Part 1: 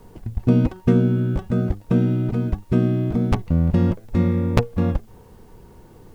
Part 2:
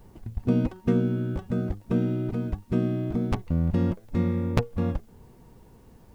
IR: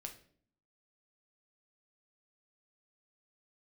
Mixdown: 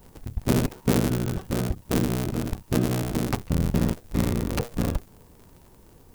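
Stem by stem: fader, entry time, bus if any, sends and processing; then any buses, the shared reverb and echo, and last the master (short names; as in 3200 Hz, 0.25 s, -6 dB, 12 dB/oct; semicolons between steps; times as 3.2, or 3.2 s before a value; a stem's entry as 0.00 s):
-11.5 dB, 0.00 s, no send, dry
-2.5 dB, 0.00 s, no send, cycle switcher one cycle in 3, inverted; high shelf 4900 Hz +11 dB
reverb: off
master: dry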